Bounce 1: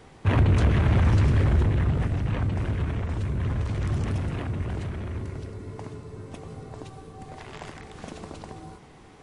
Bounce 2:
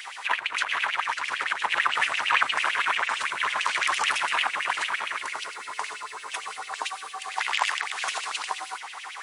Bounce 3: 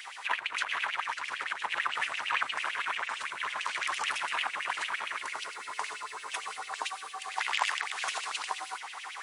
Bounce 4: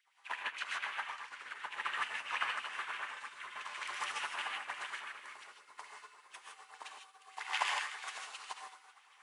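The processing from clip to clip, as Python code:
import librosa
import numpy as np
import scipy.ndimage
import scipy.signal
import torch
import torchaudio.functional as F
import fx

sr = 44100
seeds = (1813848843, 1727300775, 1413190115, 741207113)

y1 = fx.tilt_eq(x, sr, slope=2.0)
y1 = fx.over_compress(y1, sr, threshold_db=-29.0, ratio=-0.5)
y1 = fx.filter_lfo_highpass(y1, sr, shape='sine', hz=8.9, low_hz=910.0, high_hz=2900.0, q=4.4)
y1 = F.gain(torch.from_numpy(y1), 8.5).numpy()
y2 = fx.rider(y1, sr, range_db=3, speed_s=2.0)
y2 = F.gain(torch.from_numpy(y2), -6.0).numpy()
y3 = fx.rev_gated(y2, sr, seeds[0], gate_ms=180, shape='rising', drr_db=-1.5)
y3 = fx.upward_expand(y3, sr, threshold_db=-44.0, expansion=2.5)
y3 = F.gain(torch.from_numpy(y3), -5.0).numpy()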